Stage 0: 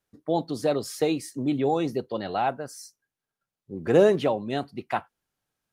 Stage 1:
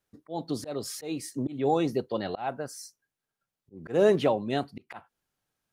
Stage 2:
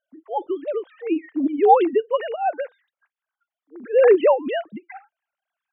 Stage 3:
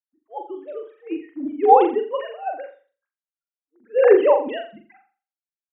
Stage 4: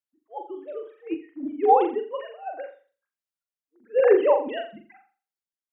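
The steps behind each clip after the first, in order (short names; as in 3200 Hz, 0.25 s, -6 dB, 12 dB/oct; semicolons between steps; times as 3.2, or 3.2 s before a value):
auto swell 0.233 s
sine-wave speech; gain +8.5 dB
flutter echo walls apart 7.3 m, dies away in 0.46 s; three-band expander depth 70%; gain -5 dB
random-step tremolo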